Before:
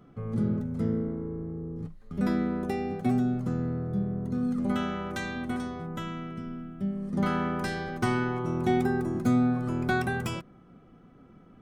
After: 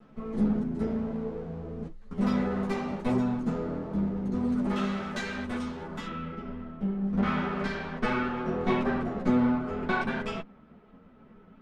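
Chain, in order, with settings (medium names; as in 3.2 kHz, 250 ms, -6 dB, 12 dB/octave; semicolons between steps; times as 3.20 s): comb filter that takes the minimum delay 4.6 ms; low-pass 8.1 kHz 12 dB/octave, from 6.07 s 3.6 kHz; three-phase chorus; trim +4.5 dB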